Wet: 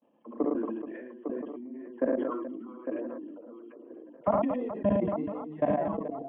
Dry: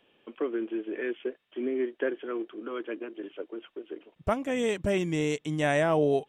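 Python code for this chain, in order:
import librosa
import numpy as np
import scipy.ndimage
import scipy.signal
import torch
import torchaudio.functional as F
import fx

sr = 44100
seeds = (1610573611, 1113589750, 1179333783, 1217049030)

y = fx.spec_delay(x, sr, highs='early', ms=175)
y = fx.transient(y, sr, attack_db=8, sustain_db=-2)
y = fx.level_steps(y, sr, step_db=22)
y = fx.tilt_shelf(y, sr, db=9.5, hz=970.0)
y = fx.echo_feedback(y, sr, ms=1025, feedback_pct=25, wet_db=-19.0)
y = fx.dereverb_blind(y, sr, rt60_s=2.0)
y = fx.cabinet(y, sr, low_hz=240.0, low_slope=12, high_hz=2500.0, hz=(240.0, 400.0, 670.0, 1000.0, 1500.0, 2300.0), db=(7, -9, 5, 9, -7, -7))
y = fx.echo_multitap(y, sr, ms=(58, 72, 109, 230, 429, 854), db=(-11.0, -5.5, -3.0, -18.5, -14.0, -7.0))
y = fx.sustainer(y, sr, db_per_s=30.0)
y = F.gain(torch.from_numpy(y), -6.0).numpy()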